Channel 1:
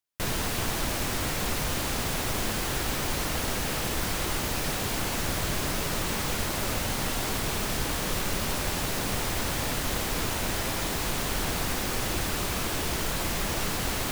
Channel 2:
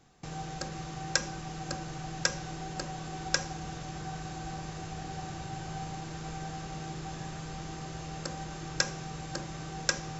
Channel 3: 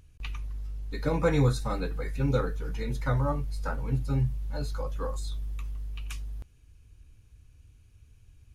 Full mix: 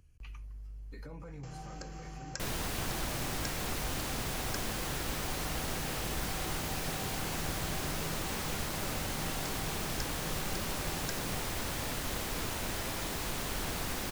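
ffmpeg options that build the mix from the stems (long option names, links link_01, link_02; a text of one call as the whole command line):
ffmpeg -i stem1.wav -i stem2.wav -i stem3.wav -filter_complex "[0:a]adelay=2200,volume=-7dB[link_01];[1:a]adelay=1200,volume=-1dB[link_02];[2:a]acrossover=split=160[link_03][link_04];[link_04]acompressor=threshold=-30dB:ratio=6[link_05];[link_03][link_05]amix=inputs=2:normalize=0,alimiter=level_in=3dB:limit=-24dB:level=0:latency=1,volume=-3dB,volume=-6.5dB[link_06];[link_02][link_06]amix=inputs=2:normalize=0,bandreject=frequency=3700:width=5.1,acompressor=threshold=-43dB:ratio=3,volume=0dB[link_07];[link_01][link_07]amix=inputs=2:normalize=0" out.wav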